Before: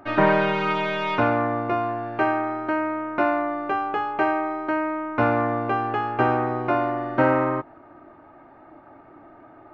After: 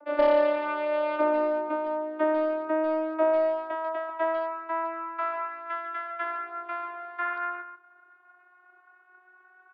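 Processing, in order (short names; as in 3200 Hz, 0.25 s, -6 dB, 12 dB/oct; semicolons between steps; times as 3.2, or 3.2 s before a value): vocoder on a gliding note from D4, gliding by +4 st; high-pass sweep 510 Hz -> 1400 Hz, 3–5.66; overloaded stage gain 10.5 dB; speakerphone echo 0.14 s, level -9 dB; downsampling 11025 Hz; gain -4 dB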